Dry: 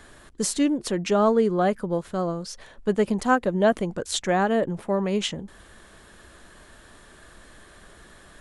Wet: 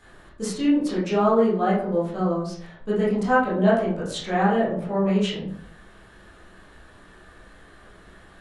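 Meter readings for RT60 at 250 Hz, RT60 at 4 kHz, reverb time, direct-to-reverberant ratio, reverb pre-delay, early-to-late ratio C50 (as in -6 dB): 0.70 s, 0.35 s, 0.60 s, -9.5 dB, 15 ms, 3.0 dB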